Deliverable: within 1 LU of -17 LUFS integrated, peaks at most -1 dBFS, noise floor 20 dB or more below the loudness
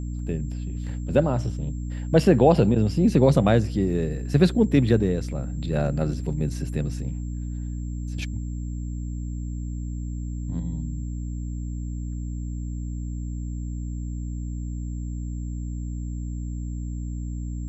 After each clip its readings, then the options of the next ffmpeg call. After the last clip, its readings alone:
hum 60 Hz; harmonics up to 300 Hz; hum level -28 dBFS; steady tone 7400 Hz; tone level -54 dBFS; loudness -26.0 LUFS; peak -4.5 dBFS; loudness target -17.0 LUFS
-> -af "bandreject=f=60:t=h:w=6,bandreject=f=120:t=h:w=6,bandreject=f=180:t=h:w=6,bandreject=f=240:t=h:w=6,bandreject=f=300:t=h:w=6"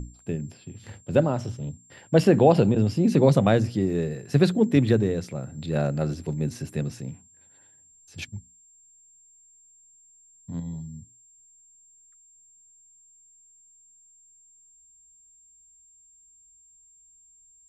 hum none; steady tone 7400 Hz; tone level -54 dBFS
-> -af "bandreject=f=7.4k:w=30"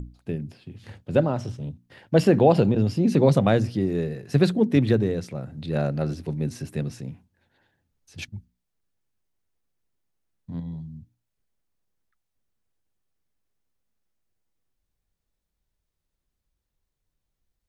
steady tone none; loudness -23.0 LUFS; peak -5.0 dBFS; loudness target -17.0 LUFS
-> -af "volume=6dB,alimiter=limit=-1dB:level=0:latency=1"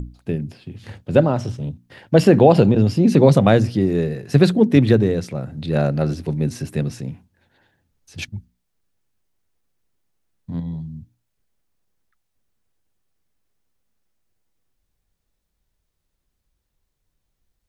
loudness -17.5 LUFS; peak -1.0 dBFS; noise floor -75 dBFS

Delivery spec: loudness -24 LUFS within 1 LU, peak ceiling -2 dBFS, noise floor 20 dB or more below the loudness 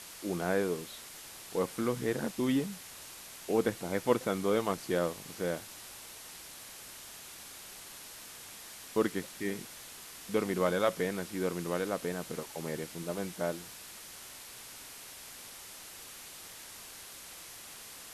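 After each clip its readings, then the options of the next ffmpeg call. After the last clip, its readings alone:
noise floor -49 dBFS; noise floor target -56 dBFS; loudness -36.0 LUFS; peak -13.0 dBFS; loudness target -24.0 LUFS
-> -af "afftdn=nr=7:nf=-49"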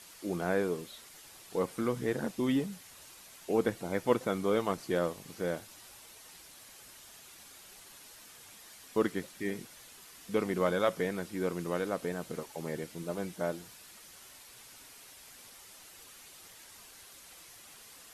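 noise floor -54 dBFS; loudness -33.5 LUFS; peak -13.0 dBFS; loudness target -24.0 LUFS
-> -af "volume=9.5dB"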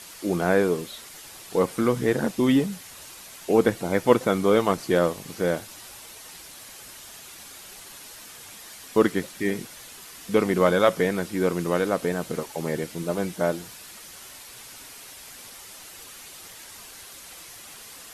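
loudness -24.0 LUFS; peak -3.5 dBFS; noise floor -44 dBFS

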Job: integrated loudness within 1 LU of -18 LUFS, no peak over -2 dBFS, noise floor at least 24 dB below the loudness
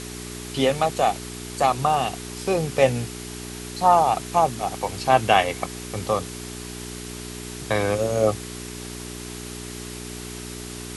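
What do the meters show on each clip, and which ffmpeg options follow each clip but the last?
hum 60 Hz; harmonics up to 420 Hz; hum level -35 dBFS; noise floor -36 dBFS; noise floor target -49 dBFS; loudness -24.5 LUFS; peak -3.0 dBFS; loudness target -18.0 LUFS
-> -af "bandreject=f=60:t=h:w=4,bandreject=f=120:t=h:w=4,bandreject=f=180:t=h:w=4,bandreject=f=240:t=h:w=4,bandreject=f=300:t=h:w=4,bandreject=f=360:t=h:w=4,bandreject=f=420:t=h:w=4"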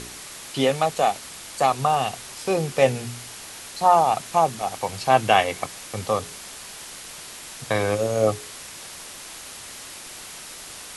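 hum none; noise floor -40 dBFS; noise floor target -47 dBFS
-> -af "afftdn=nr=7:nf=-40"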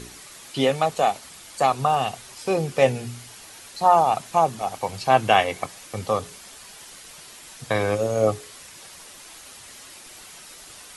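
noise floor -44 dBFS; noise floor target -47 dBFS
-> -af "afftdn=nr=6:nf=-44"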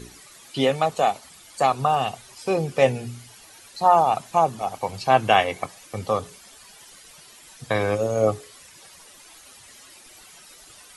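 noise floor -49 dBFS; loudness -22.5 LUFS; peak -3.0 dBFS; loudness target -18.0 LUFS
-> -af "volume=4.5dB,alimiter=limit=-2dB:level=0:latency=1"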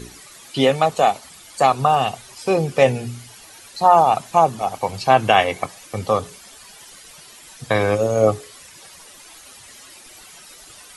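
loudness -18.5 LUFS; peak -2.0 dBFS; noise floor -44 dBFS

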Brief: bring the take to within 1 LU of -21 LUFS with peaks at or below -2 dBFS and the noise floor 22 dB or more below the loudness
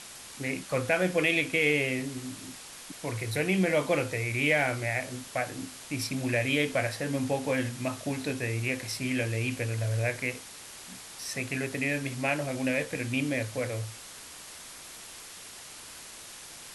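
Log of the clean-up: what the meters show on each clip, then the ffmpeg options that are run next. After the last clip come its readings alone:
noise floor -46 dBFS; noise floor target -52 dBFS; loudness -29.5 LUFS; peak -12.5 dBFS; loudness target -21.0 LUFS
-> -af "afftdn=nr=6:nf=-46"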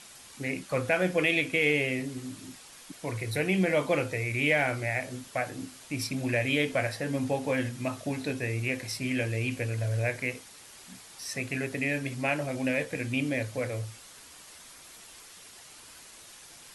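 noise floor -51 dBFS; noise floor target -52 dBFS
-> -af "afftdn=nr=6:nf=-51"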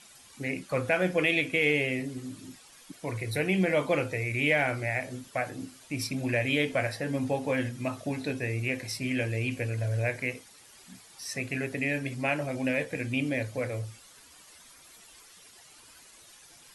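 noise floor -54 dBFS; loudness -29.5 LUFS; peak -12.0 dBFS; loudness target -21.0 LUFS
-> -af "volume=8.5dB"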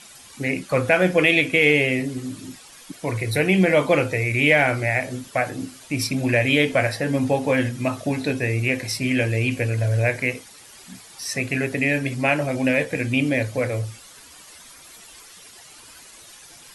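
loudness -21.0 LUFS; peak -3.5 dBFS; noise floor -46 dBFS

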